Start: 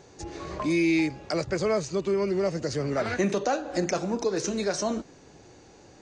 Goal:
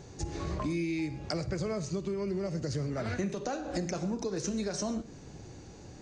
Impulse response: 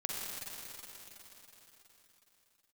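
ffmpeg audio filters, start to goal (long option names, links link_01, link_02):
-filter_complex "[0:a]bass=frequency=250:gain=11,treble=frequency=4000:gain=3,acompressor=threshold=-29dB:ratio=6,asplit=2[link_01][link_02];[1:a]atrim=start_sample=2205,atrim=end_sample=6174[link_03];[link_02][link_03]afir=irnorm=-1:irlink=0,volume=-8dB[link_04];[link_01][link_04]amix=inputs=2:normalize=0,volume=-4dB"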